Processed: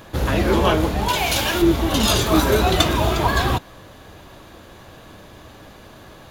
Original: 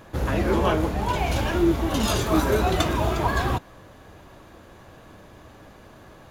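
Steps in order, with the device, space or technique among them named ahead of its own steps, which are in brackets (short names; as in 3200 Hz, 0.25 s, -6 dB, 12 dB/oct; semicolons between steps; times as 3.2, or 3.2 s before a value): presence and air boost (bell 3700 Hz +5.5 dB 1 oct; high shelf 9700 Hz +6.5 dB); 1.08–1.62 tilt +2 dB/oct; gain +4 dB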